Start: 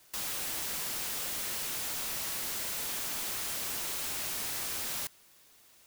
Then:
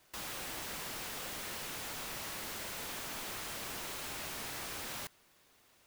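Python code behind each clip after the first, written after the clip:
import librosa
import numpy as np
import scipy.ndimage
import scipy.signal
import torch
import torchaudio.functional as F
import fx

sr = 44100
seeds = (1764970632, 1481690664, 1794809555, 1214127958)

y = fx.high_shelf(x, sr, hz=3800.0, db=-10.0)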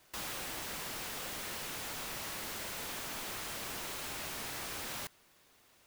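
y = fx.rider(x, sr, range_db=10, speed_s=0.5)
y = y * 10.0 ** (1.0 / 20.0)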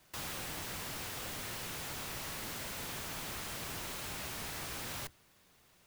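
y = fx.octave_divider(x, sr, octaves=1, level_db=3.0)
y = y * 10.0 ** (-1.0 / 20.0)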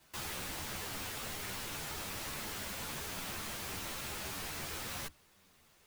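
y = fx.ensemble(x, sr)
y = y * 10.0 ** (3.5 / 20.0)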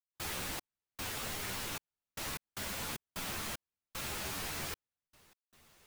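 y = fx.step_gate(x, sr, bpm=76, pattern='.xx..xxxx..x.xx', floor_db=-60.0, edge_ms=4.5)
y = y * 10.0 ** (2.0 / 20.0)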